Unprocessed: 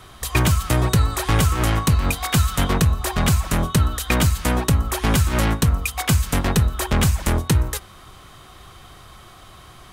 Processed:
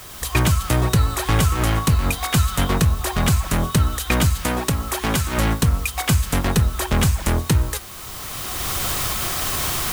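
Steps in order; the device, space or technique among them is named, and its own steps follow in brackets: 4.46–5.38 s: bass shelf 140 Hz -8 dB; cheap recorder with automatic gain (white noise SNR 21 dB; recorder AGC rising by 15 dB/s)

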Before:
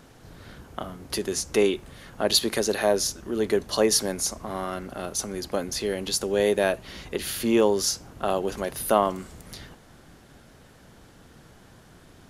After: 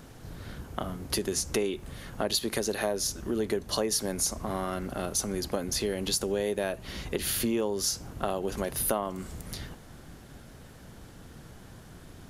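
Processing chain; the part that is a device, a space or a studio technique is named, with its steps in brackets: ASMR close-microphone chain (bass shelf 210 Hz +6 dB; compression 5:1, threshold -26 dBFS, peak gain reduction 12 dB; treble shelf 10 kHz +6 dB)

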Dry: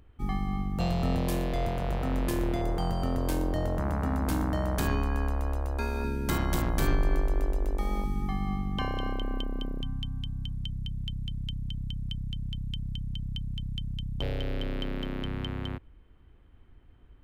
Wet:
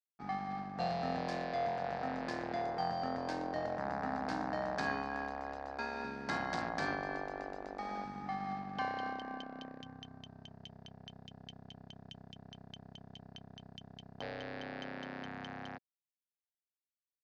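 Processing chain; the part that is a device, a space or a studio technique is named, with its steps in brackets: blown loudspeaker (crossover distortion -42.5 dBFS; cabinet simulation 220–5600 Hz, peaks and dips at 360 Hz -7 dB, 750 Hz +10 dB, 1.7 kHz +8 dB, 3.1 kHz -6 dB, 4.7 kHz +6 dB); trim -5.5 dB

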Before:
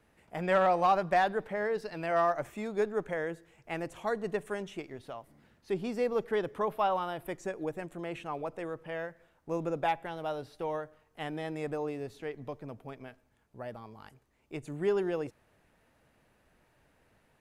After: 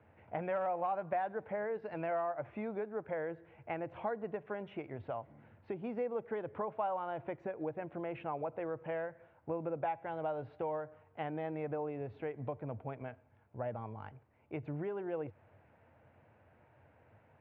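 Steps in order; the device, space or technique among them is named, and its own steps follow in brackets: bass amplifier (compression 4:1, threshold -39 dBFS, peak gain reduction 15 dB; cabinet simulation 84–2100 Hz, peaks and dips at 94 Hz +8 dB, 180 Hz -8 dB, 270 Hz -5 dB, 390 Hz -6 dB, 1.2 kHz -6 dB, 1.8 kHz -7 dB); trim +6 dB

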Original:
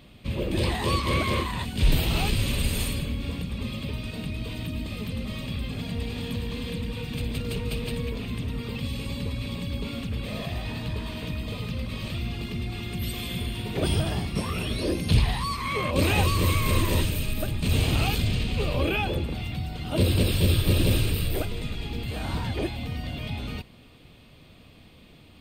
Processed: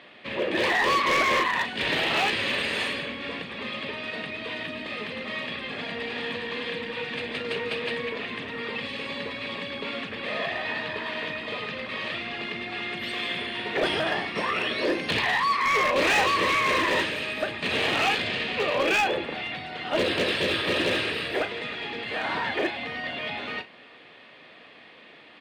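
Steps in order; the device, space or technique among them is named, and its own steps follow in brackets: megaphone (band-pass 480–3100 Hz; peaking EQ 1.8 kHz +9.5 dB 0.33 oct; hard clipper -26 dBFS, distortion -15 dB; doubling 37 ms -12.5 dB); trim +7.5 dB

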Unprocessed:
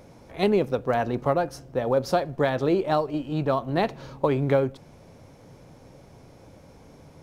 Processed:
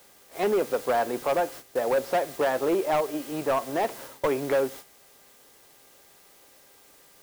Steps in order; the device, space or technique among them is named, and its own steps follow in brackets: aircraft radio (band-pass 380–2400 Hz; hard clipper -21 dBFS, distortion -12 dB; mains buzz 400 Hz, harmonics 5, -57 dBFS -1 dB/octave; white noise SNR 16 dB; gate -42 dBFS, range -12 dB); trim +2 dB

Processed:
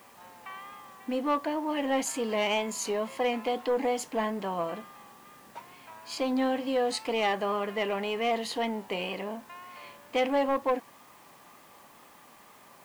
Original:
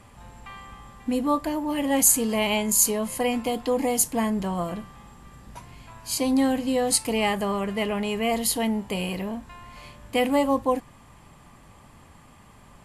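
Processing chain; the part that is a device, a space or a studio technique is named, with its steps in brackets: tape answering machine (band-pass 350–3400 Hz; saturation -19 dBFS, distortion -16 dB; wow and flutter; white noise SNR 29 dB)

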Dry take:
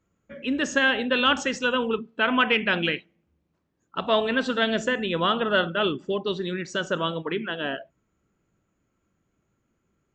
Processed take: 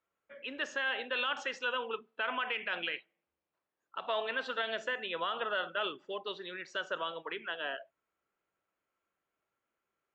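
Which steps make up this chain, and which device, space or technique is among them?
DJ mixer with the lows and highs turned down (three-band isolator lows -22 dB, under 480 Hz, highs -17 dB, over 4.6 kHz; peak limiter -17.5 dBFS, peak gain reduction 9 dB); trim -6 dB

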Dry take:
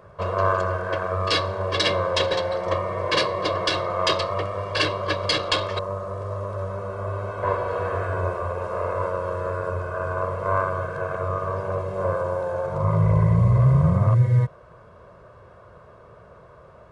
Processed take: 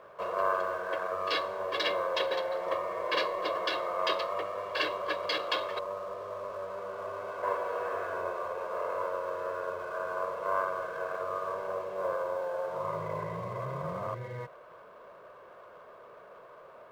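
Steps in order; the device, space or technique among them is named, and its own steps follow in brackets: phone line with mismatched companding (band-pass 390–3600 Hz; companding laws mixed up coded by mu); trim -7 dB

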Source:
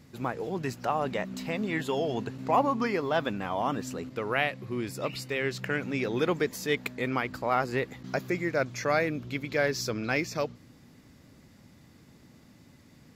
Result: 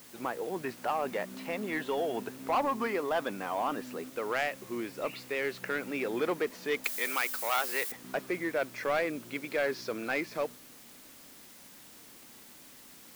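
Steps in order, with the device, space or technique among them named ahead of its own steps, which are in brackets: tape answering machine (band-pass 300–3000 Hz; saturation -22 dBFS, distortion -13 dB; wow and flutter; white noise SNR 19 dB); 6.84–7.92 s: tilt EQ +4.5 dB/octave

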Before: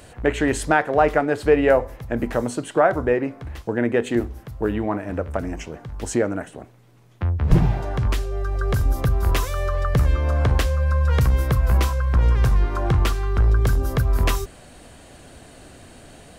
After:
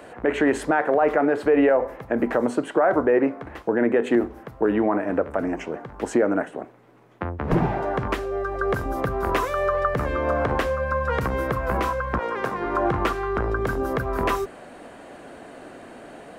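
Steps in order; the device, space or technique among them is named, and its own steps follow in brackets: DJ mixer with the lows and highs turned down (three-band isolator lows -20 dB, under 210 Hz, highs -15 dB, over 2.2 kHz; peak limiter -17 dBFS, peak gain reduction 11.5 dB); 12.18–12.65 s: high-pass 480 Hz -> 140 Hz 12 dB/octave; trim +6.5 dB

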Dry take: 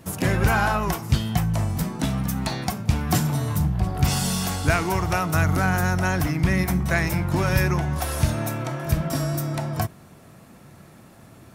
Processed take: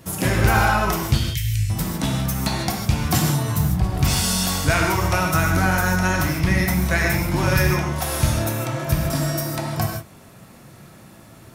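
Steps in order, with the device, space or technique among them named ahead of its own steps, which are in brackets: 1.19–1.70 s: elliptic band-stop 120–2100 Hz, stop band 40 dB; presence and air boost (peaking EQ 4 kHz +3 dB 1.5 oct; treble shelf 11 kHz +5 dB); gated-style reverb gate 180 ms flat, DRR 0.5 dB

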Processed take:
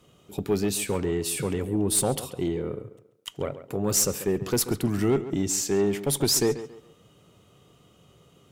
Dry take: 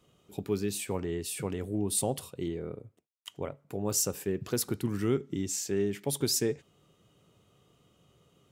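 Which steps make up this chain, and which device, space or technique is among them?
rockabilly slapback (valve stage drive 22 dB, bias 0.25; tape echo 137 ms, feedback 33%, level -12.5 dB, low-pass 3.5 kHz); trim +8 dB

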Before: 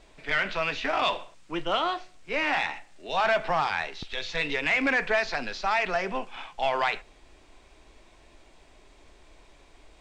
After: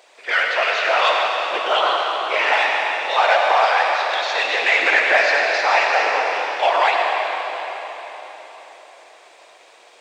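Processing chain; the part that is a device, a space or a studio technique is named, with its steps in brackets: whispering ghost (whisper effect; high-pass 480 Hz 24 dB/octave; reverberation RT60 4.4 s, pre-delay 70 ms, DRR -0.5 dB); trim +7.5 dB

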